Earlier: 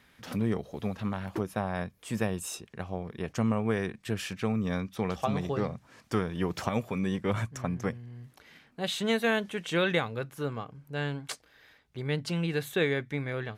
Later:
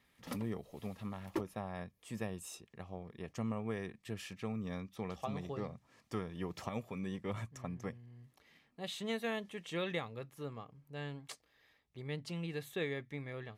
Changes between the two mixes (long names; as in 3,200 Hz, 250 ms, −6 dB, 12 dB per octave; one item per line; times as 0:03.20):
speech −10.5 dB
master: add Butterworth band-reject 1,500 Hz, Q 7.5